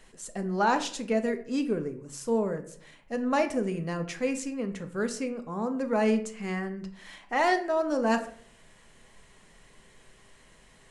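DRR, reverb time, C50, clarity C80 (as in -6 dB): 7.0 dB, 0.60 s, 12.5 dB, 16.0 dB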